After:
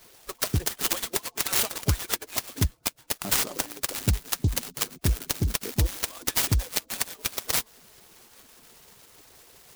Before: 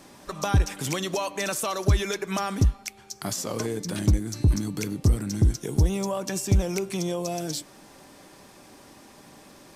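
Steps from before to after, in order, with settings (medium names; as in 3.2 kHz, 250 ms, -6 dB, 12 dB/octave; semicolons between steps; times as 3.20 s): harmonic-percussive separation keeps percussive; resonant high shelf 3.6 kHz +11.5 dB, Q 1.5; delay time shaken by noise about 5.1 kHz, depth 0.054 ms; trim -3.5 dB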